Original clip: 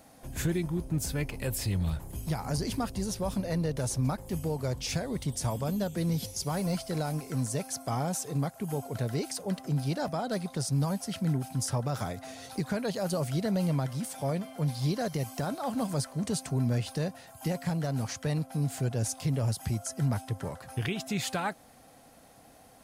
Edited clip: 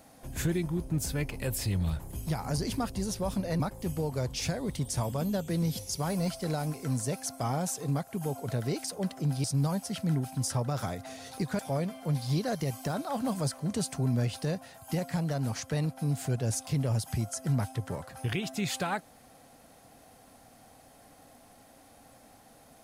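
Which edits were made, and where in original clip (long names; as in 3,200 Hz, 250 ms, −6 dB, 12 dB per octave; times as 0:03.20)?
0:03.60–0:04.07: remove
0:09.91–0:10.62: remove
0:12.77–0:14.12: remove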